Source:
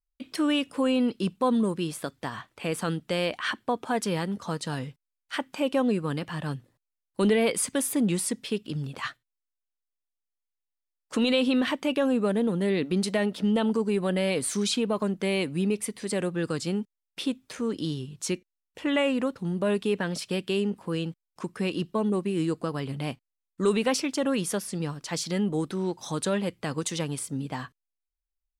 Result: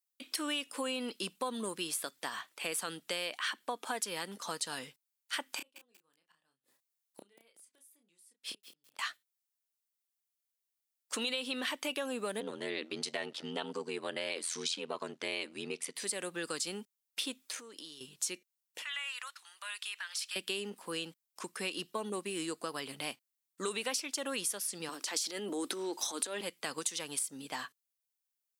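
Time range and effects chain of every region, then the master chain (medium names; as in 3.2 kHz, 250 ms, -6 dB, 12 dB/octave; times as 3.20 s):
5.57–8.99 s: inverted gate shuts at -27 dBFS, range -40 dB + doubling 30 ms -6 dB + bit-crushed delay 187 ms, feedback 35%, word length 9-bit, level -12.5 dB
12.40–15.96 s: band-pass 190–5600 Hz + ring modulator 42 Hz
17.42–18.01 s: compression 4:1, threshold -39 dBFS + bass shelf 170 Hz -10.5 dB
18.82–20.36 s: high-pass 1.2 kHz 24 dB/octave + treble shelf 10 kHz -7 dB + compression 2.5:1, threshold -38 dBFS
24.89–26.41 s: Chebyshev high-pass 280 Hz, order 3 + bass shelf 450 Hz +9.5 dB + transient shaper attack -7 dB, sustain +7 dB
whole clip: high-pass 230 Hz 12 dB/octave; tilt EQ +3.5 dB/octave; compression 5:1, threshold -29 dBFS; trim -3.5 dB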